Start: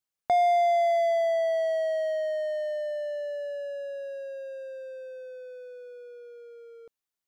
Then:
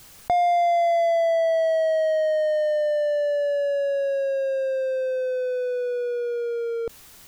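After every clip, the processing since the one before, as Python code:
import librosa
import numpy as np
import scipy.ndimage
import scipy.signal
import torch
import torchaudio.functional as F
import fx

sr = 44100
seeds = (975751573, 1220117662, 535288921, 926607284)

y = fx.low_shelf(x, sr, hz=140.0, db=12.0)
y = fx.env_flatten(y, sr, amount_pct=70)
y = y * librosa.db_to_amplitude(1.0)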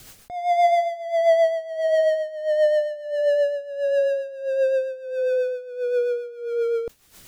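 y = fx.rotary(x, sr, hz=7.5)
y = y * (1.0 - 0.86 / 2.0 + 0.86 / 2.0 * np.cos(2.0 * np.pi * 1.5 * (np.arange(len(y)) / sr)))
y = y * librosa.db_to_amplitude(7.0)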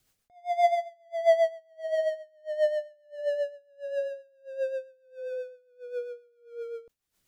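y = fx.upward_expand(x, sr, threshold_db=-30.0, expansion=2.5)
y = y * librosa.db_to_amplitude(-2.0)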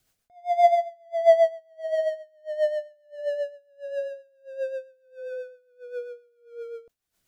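y = fx.small_body(x, sr, hz=(680.0, 1500.0), ring_ms=45, db=6)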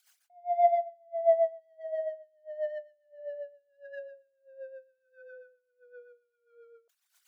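y = fx.envelope_sharpen(x, sr, power=2.0)
y = scipy.signal.sosfilt(scipy.signal.butter(4, 990.0, 'highpass', fs=sr, output='sos'), y)
y = y * librosa.db_to_amplitude(7.5)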